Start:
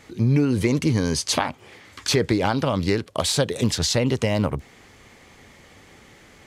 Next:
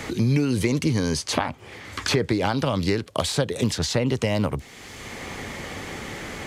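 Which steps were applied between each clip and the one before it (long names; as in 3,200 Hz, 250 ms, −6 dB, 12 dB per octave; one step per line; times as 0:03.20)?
multiband upward and downward compressor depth 70%
level −1.5 dB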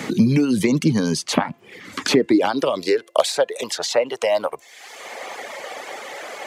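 hum removal 342.6 Hz, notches 8
reverb reduction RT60 0.96 s
high-pass filter sweep 190 Hz → 610 Hz, 0:01.78–0:03.29
level +3 dB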